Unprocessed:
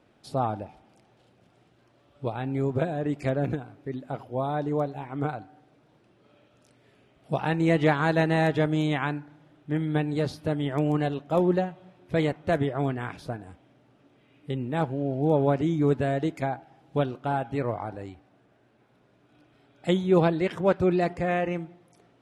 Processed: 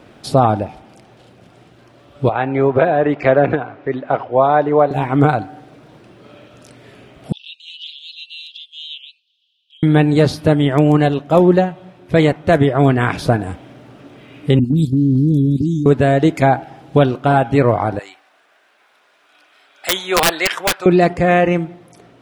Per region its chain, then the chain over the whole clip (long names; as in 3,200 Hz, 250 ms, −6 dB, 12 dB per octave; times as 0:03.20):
0:02.29–0:04.91: low-pass filter 6,300 Hz 24 dB per octave + three-way crossover with the lows and the highs turned down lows −13 dB, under 430 Hz, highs −18 dB, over 2,800 Hz
0:07.32–0:09.83: Butterworth high-pass 2,900 Hz 96 dB per octave + high-frequency loss of the air 350 metres + comb filter 3.7 ms, depth 58%
0:14.59–0:15.86: elliptic band-stop filter 280–4,300 Hz, stop band 50 dB + output level in coarse steps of 11 dB + all-pass dispersion highs, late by 51 ms, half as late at 1,700 Hz
0:17.99–0:20.86: high-pass filter 1,100 Hz + wrap-around overflow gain 24.5 dB
whole clip: speech leveller within 4 dB 0.5 s; notch filter 850 Hz, Q 28; boost into a limiter +17 dB; level −1 dB